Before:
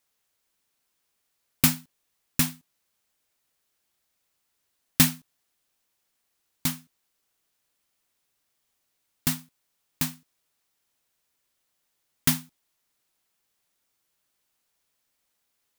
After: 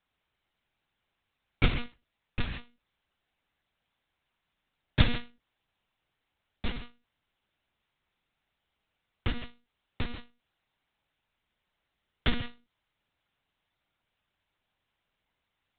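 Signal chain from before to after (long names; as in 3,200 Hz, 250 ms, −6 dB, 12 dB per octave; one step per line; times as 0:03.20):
0:01.70–0:02.50: notch comb filter 260 Hz
reverb whose tail is shaped and stops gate 190 ms flat, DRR 4 dB
one-pitch LPC vocoder at 8 kHz 240 Hz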